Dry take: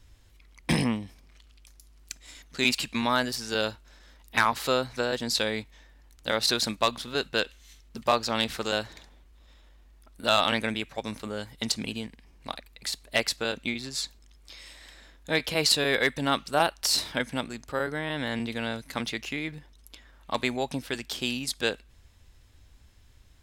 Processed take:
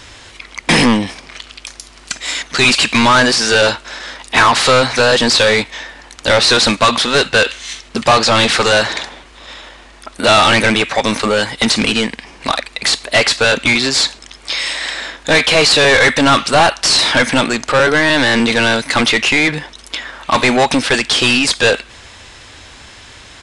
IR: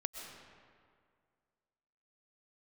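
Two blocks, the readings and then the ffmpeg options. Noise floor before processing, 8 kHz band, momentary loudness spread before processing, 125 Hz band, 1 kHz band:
−56 dBFS, +15.5 dB, 15 LU, +14.5 dB, +16.0 dB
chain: -filter_complex "[0:a]asplit=2[link_01][link_02];[link_02]highpass=frequency=720:poles=1,volume=29dB,asoftclip=type=tanh:threshold=-11dB[link_03];[link_01][link_03]amix=inputs=2:normalize=0,lowpass=frequency=4300:poles=1,volume=-6dB,aresample=22050,aresample=44100,volume=8.5dB"

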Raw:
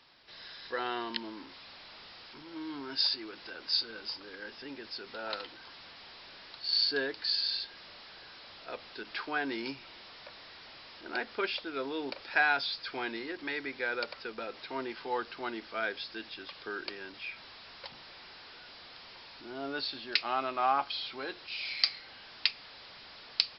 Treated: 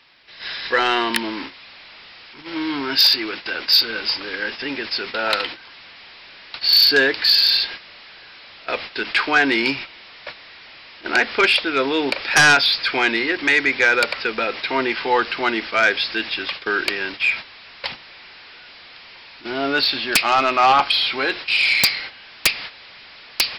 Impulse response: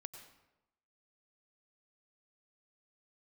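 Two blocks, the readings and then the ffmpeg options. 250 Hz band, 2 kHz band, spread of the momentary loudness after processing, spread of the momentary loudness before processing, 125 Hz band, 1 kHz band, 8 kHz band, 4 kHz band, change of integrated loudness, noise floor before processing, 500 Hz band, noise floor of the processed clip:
+15.0 dB, +17.5 dB, 17 LU, 19 LU, +18.5 dB, +14.5 dB, can't be measured, +15.5 dB, +16.0 dB, −51 dBFS, +14.5 dB, −43 dBFS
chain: -af "agate=range=-11dB:threshold=-48dB:ratio=16:detection=peak,equalizer=frequency=2300:width=1.3:gain=8,aeval=exprs='0.668*sin(PI/2*6.31*val(0)/0.668)':channel_layout=same,volume=-4.5dB"

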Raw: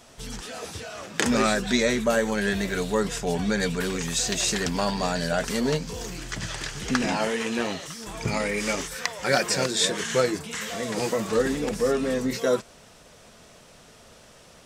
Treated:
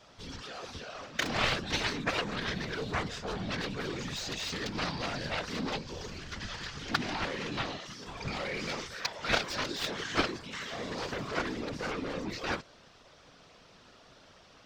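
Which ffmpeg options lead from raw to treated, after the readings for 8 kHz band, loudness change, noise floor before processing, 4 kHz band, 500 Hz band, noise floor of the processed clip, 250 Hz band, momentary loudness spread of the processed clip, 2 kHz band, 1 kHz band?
−14.5 dB, −8.5 dB, −52 dBFS, −5.5 dB, −12.5 dB, −58 dBFS, −11.0 dB, 11 LU, −5.5 dB, −6.0 dB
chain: -af "equalizer=frequency=1200:width_type=o:width=0.75:gain=3.5,aeval=exprs='0.562*(cos(1*acos(clip(val(0)/0.562,-1,1)))-cos(1*PI/2))+0.00708*(cos(5*acos(clip(val(0)/0.562,-1,1)))-cos(5*PI/2))+0.02*(cos(6*acos(clip(val(0)/0.562,-1,1)))-cos(6*PI/2))+0.158*(cos(7*acos(clip(val(0)/0.562,-1,1)))-cos(7*PI/2))+0.02*(cos(8*acos(clip(val(0)/0.562,-1,1)))-cos(8*PI/2))':channel_layout=same,highshelf=frequency=6700:width_type=q:width=1.5:gain=-13.5,afftfilt=real='hypot(re,im)*cos(2*PI*random(0))':imag='hypot(re,im)*sin(2*PI*random(1))':win_size=512:overlap=0.75"

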